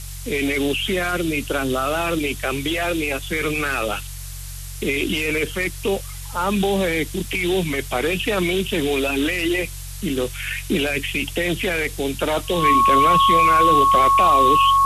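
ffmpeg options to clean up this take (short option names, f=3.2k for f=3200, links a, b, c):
-af "bandreject=f=46:t=h:w=4,bandreject=f=92:t=h:w=4,bandreject=f=138:t=h:w=4,bandreject=f=1.1k:w=30,afftdn=nr=30:nf=-33"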